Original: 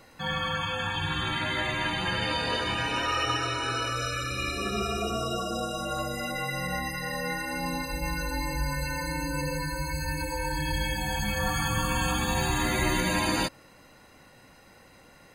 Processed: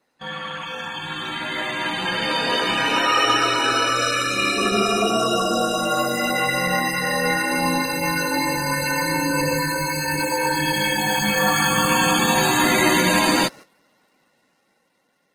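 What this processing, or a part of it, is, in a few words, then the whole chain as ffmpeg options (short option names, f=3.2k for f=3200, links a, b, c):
video call: -af "highpass=f=170:w=0.5412,highpass=f=170:w=1.3066,dynaudnorm=f=680:g=7:m=11dB,agate=range=-14dB:threshold=-38dB:ratio=16:detection=peak" -ar 48000 -c:a libopus -b:a 16k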